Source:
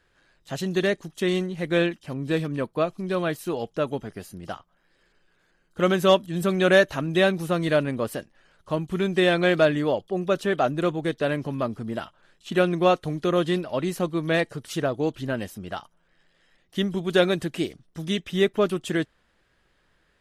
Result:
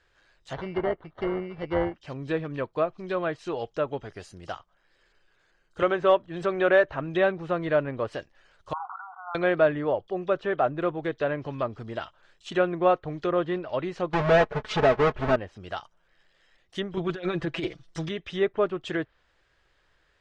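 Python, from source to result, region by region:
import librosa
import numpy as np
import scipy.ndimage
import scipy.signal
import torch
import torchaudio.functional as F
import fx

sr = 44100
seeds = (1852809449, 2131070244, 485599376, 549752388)

y = fx.chain(x, sr, fx.sample_hold(seeds[0], rate_hz=2500.0, jitter_pct=0),
    fx.air_absorb(metres=350.0), at=(0.53, 1.95))
y = fx.chain(y, sr, fx.peak_eq(hz=200.0, db=-6.5, octaves=0.66),
    fx.band_squash(depth_pct=40), at=(5.82, 6.86))
y = fx.chain(y, sr, fx.brickwall_bandpass(low_hz=720.0, high_hz=1500.0),
    fx.sustainer(db_per_s=33.0), at=(8.73, 9.35))
y = fx.chain(y, sr, fx.halfwave_hold(),
    fx.leveller(passes=1),
    fx.comb(ms=4.7, depth=0.72), at=(14.13, 15.36))
y = fx.chain(y, sr, fx.high_shelf(hz=2700.0, db=8.0),
    fx.comb(ms=6.0, depth=0.74),
    fx.over_compress(threshold_db=-22.0, ratio=-0.5), at=(16.97, 18.09))
y = fx.env_lowpass_down(y, sr, base_hz=1700.0, full_db=-20.5)
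y = scipy.signal.sosfilt(scipy.signal.butter(4, 7800.0, 'lowpass', fs=sr, output='sos'), y)
y = fx.peak_eq(y, sr, hz=210.0, db=-10.5, octaves=1.1)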